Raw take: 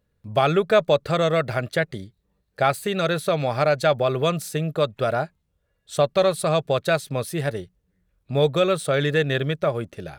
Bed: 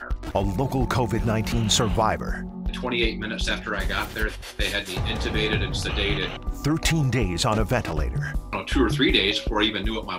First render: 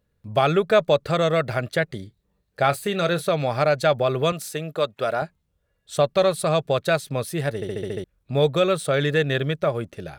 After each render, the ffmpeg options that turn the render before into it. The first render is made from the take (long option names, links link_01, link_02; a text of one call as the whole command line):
ffmpeg -i in.wav -filter_complex "[0:a]asettb=1/sr,asplit=3[link_01][link_02][link_03];[link_01]atrim=end=2.004[link_04];[link_02]atrim=start=2:end=3.25,asetpts=PTS-STARTPTS,afade=type=in:duration=0.004:curve=qsin,afade=type=out:start_time=1.246:duration=0.004:curve=qsin,asplit=2[link_05][link_06];[link_06]adelay=29,volume=-13dB[link_07];[link_05][link_07]amix=inputs=2:normalize=0,atrim=end_sample=55125[link_08];[link_03]atrim=start=3.246[link_09];[link_04][link_08]acrossfade=duration=0.004:curve1=hsin:curve2=qsin[link_10];[link_10][link_09]acrossfade=duration=0.004:curve1=qsin:curve2=hsin,asettb=1/sr,asplit=3[link_11][link_12][link_13];[link_11]atrim=end=4.324[link_14];[link_12]atrim=start=4.32:end=5.22,asetpts=PTS-STARTPTS,afade=type=in:duration=0.004:curve=qsin,afade=type=out:start_time=0.896:duration=0.004:curve=qsin,highpass=frequency=340:poles=1[link_15];[link_13]atrim=start=5.216[link_16];[link_14][link_15]acrossfade=duration=0.004:curve1=hsin:curve2=qsin[link_17];[link_17][link_16]acrossfade=duration=0.004:curve1=qsin:curve2=hsin,asplit=8[link_18][link_19][link_20][link_21][link_22][link_23][link_24][link_25];[link_18]atrim=end=7.622[link_26];[link_19]atrim=start=7.548:end=7.622[link_27];[link_20]atrim=start=7.548:end=7.622[link_28];[link_21]atrim=start=7.548:end=7.622[link_29];[link_22]atrim=start=7.548:end=7.622[link_30];[link_23]atrim=start=7.548:end=7.622[link_31];[link_24]atrim=start=7.548:end=7.622[link_32];[link_25]atrim=start=8.038[link_33];[link_26][link_27]acrossfade=duration=0.004:curve1=hsin:curve2=hsin[link_34];[link_34][link_28]acrossfade=duration=0.004:curve1=hsin:curve2=hsin[link_35];[link_35][link_29]acrossfade=duration=0.004:curve1=hsin:curve2=hsin[link_36];[link_36][link_30]acrossfade=duration=0.004:curve1=hsin:curve2=hsin[link_37];[link_37][link_31]acrossfade=duration=0.004:curve1=hsin:curve2=hsin[link_38];[link_38][link_32]acrossfade=duration=0.004:curve1=hsin:curve2=hsin[link_39];[link_39][link_33]acrossfade=duration=0.004:curve1=hsin:curve2=hsin" out.wav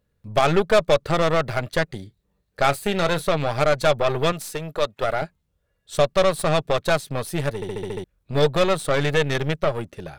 ffmpeg -i in.wav -af "aeval=exprs='0.531*(cos(1*acos(clip(val(0)/0.531,-1,1)))-cos(1*PI/2))+0.0596*(cos(8*acos(clip(val(0)/0.531,-1,1)))-cos(8*PI/2))':channel_layout=same" out.wav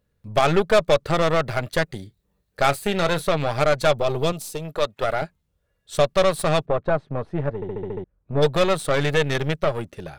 ffmpeg -i in.wav -filter_complex "[0:a]asettb=1/sr,asplit=3[link_01][link_02][link_03];[link_01]atrim=end=1.624[link_04];[link_02]atrim=start=1.62:end=2.71,asetpts=PTS-STARTPTS,afade=type=in:duration=0.004:curve=qsin,afade=type=out:start_time=1.086:duration=0.004:curve=qsin,highshelf=frequency=9100:gain=4.5[link_05];[link_03]atrim=start=2.706[link_06];[link_04][link_05]acrossfade=duration=0.004:curve1=hsin:curve2=qsin[link_07];[link_07][link_06]acrossfade=duration=0.004:curve1=qsin:curve2=hsin,asettb=1/sr,asplit=3[link_08][link_09][link_10];[link_08]atrim=end=3.984[link_11];[link_09]atrim=start=3.98:end=4.65,asetpts=PTS-STARTPTS,afade=type=in:duration=0.004:curve=qsin,afade=type=out:start_time=0.666:duration=0.004:curve=qsin,equalizer=frequency=1700:width=1.5:gain=-11.5[link_12];[link_10]atrim=start=4.646[link_13];[link_11][link_12]acrossfade=duration=0.004:curve1=hsin:curve2=qsin[link_14];[link_14][link_13]acrossfade=duration=0.004:curve1=qsin:curve2=hsin,asplit=3[link_15][link_16][link_17];[link_15]afade=type=out:start_time=6.65:duration=0.02[link_18];[link_16]lowpass=1200,afade=type=in:start_time=6.65:duration=0.02,afade=type=out:start_time=8.41:duration=0.02[link_19];[link_17]afade=type=in:start_time=8.41:duration=0.02[link_20];[link_18][link_19][link_20]amix=inputs=3:normalize=0" out.wav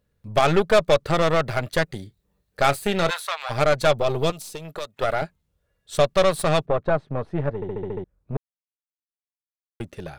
ffmpeg -i in.wav -filter_complex "[0:a]asplit=3[link_01][link_02][link_03];[link_01]afade=type=out:start_time=3.09:duration=0.02[link_04];[link_02]highpass=frequency=880:width=0.5412,highpass=frequency=880:width=1.3066,afade=type=in:start_time=3.09:duration=0.02,afade=type=out:start_time=3.49:duration=0.02[link_05];[link_03]afade=type=in:start_time=3.49:duration=0.02[link_06];[link_04][link_05][link_06]amix=inputs=3:normalize=0,asettb=1/sr,asplit=3[link_07][link_08][link_09];[link_07]atrim=end=4.304[link_10];[link_08]atrim=start=4.3:end=4.94,asetpts=PTS-STARTPTS,afade=type=in:duration=0.004:curve=qsin,afade=type=out:start_time=0.636:duration=0.004:curve=qsin,acrossover=split=850|5800[link_11][link_12][link_13];[link_11]acompressor=threshold=-34dB:ratio=4[link_14];[link_12]acompressor=threshold=-37dB:ratio=4[link_15];[link_13]acompressor=threshold=-39dB:ratio=4[link_16];[link_14][link_15][link_16]amix=inputs=3:normalize=0[link_17];[link_09]atrim=start=4.936[link_18];[link_10][link_17]acrossfade=duration=0.004:curve1=hsin:curve2=qsin[link_19];[link_19][link_18]acrossfade=duration=0.004:curve1=qsin:curve2=hsin,asplit=3[link_20][link_21][link_22];[link_20]atrim=end=8.37,asetpts=PTS-STARTPTS,afade=type=out:start_time=8.366:duration=0.004:curve=hsin[link_23];[link_21]atrim=start=8.37:end=9.8,asetpts=PTS-STARTPTS,volume=0[link_24];[link_22]atrim=start=9.8,asetpts=PTS-STARTPTS,afade=type=in:duration=0.004:curve=hsin[link_25];[link_23][link_24][link_25]concat=n=3:v=0:a=1" out.wav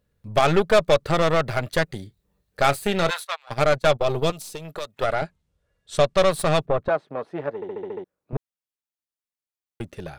ffmpeg -i in.wav -filter_complex "[0:a]asplit=3[link_01][link_02][link_03];[link_01]afade=type=out:start_time=3.23:duration=0.02[link_04];[link_02]agate=range=-21dB:threshold=-28dB:ratio=16:release=100:detection=peak,afade=type=in:start_time=3.23:duration=0.02,afade=type=out:start_time=4.27:duration=0.02[link_05];[link_03]afade=type=in:start_time=4.27:duration=0.02[link_06];[link_04][link_05][link_06]amix=inputs=3:normalize=0,asettb=1/sr,asplit=3[link_07][link_08][link_09];[link_07]atrim=end=5.064[link_10];[link_08]atrim=start=5.06:end=6.18,asetpts=PTS-STARTPTS,afade=type=in:duration=0.004:curve=qsin,afade=type=out:start_time=1.116:duration=0.004:curve=qsin,lowpass=10000[link_11];[link_09]atrim=start=6.176[link_12];[link_10][link_11]acrossfade=duration=0.004:curve1=hsin:curve2=qsin[link_13];[link_13][link_12]acrossfade=duration=0.004:curve1=qsin:curve2=hsin,asettb=1/sr,asplit=3[link_14][link_15][link_16];[link_14]atrim=end=6.884[link_17];[link_15]atrim=start=6.88:end=8.33,asetpts=PTS-STARTPTS,afade=type=in:duration=0.004:curve=qsin,afade=type=out:start_time=1.446:duration=0.004:curve=qsin,highpass=310[link_18];[link_16]atrim=start=8.326[link_19];[link_17][link_18]acrossfade=duration=0.004:curve1=hsin:curve2=qsin[link_20];[link_20][link_19]acrossfade=duration=0.004:curve1=qsin:curve2=hsin" out.wav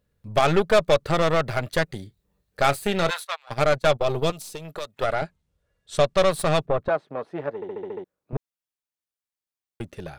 ffmpeg -i in.wav -af "volume=-1dB" out.wav